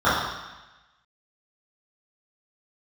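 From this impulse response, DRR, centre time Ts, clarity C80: −14.0 dB, 76 ms, 3.0 dB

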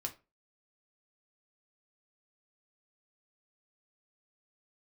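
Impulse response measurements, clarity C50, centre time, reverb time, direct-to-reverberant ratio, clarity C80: 15.5 dB, 9 ms, 0.30 s, 2.5 dB, 22.5 dB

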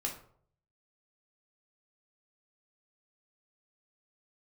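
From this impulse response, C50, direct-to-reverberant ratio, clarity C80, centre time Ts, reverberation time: 8.0 dB, 0.0 dB, 12.5 dB, 21 ms, 0.60 s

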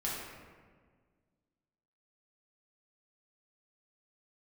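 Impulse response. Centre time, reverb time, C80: 91 ms, 1.6 s, 2.0 dB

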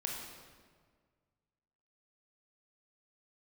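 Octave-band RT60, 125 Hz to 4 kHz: 2.2, 1.9, 1.8, 1.6, 1.4, 1.2 seconds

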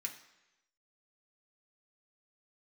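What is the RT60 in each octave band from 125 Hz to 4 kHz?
0.90, 0.90, 1.0, 1.0, 1.0, 0.95 seconds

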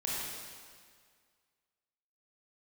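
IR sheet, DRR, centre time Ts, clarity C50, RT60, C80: −6.5 dB, 131 ms, −3.5 dB, 1.9 s, −1.0 dB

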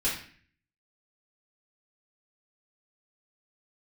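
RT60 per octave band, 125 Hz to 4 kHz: 0.75, 0.65, 0.45, 0.45, 0.60, 0.45 seconds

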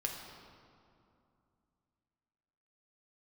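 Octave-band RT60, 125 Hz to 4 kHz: 3.2, 3.2, 2.6, 2.6, 1.9, 1.5 seconds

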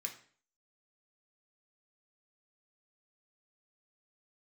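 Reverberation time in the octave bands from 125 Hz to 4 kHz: 0.50, 0.50, 0.50, 0.45, 0.45, 0.45 seconds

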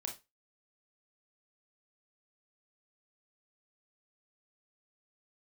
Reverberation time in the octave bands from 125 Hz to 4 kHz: 0.25, 0.25, 0.25, 0.25, 0.25, 0.20 seconds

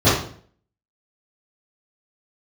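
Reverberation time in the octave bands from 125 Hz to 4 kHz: 0.65, 0.60, 0.55, 0.50, 0.45, 0.45 seconds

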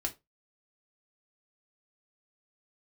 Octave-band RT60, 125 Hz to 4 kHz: 0.25, 0.20, 0.25, 0.20, 0.20, 0.15 seconds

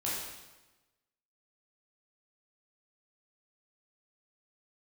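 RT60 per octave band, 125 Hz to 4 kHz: 1.2, 1.2, 1.1, 1.1, 1.0, 1.0 seconds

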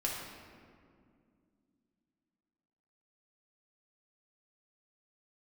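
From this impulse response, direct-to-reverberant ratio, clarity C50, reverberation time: −3.5 dB, 1.0 dB, 2.2 s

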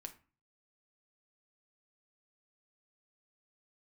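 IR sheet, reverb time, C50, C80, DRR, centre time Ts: 0.35 s, 14.0 dB, 19.5 dB, 6.0 dB, 7 ms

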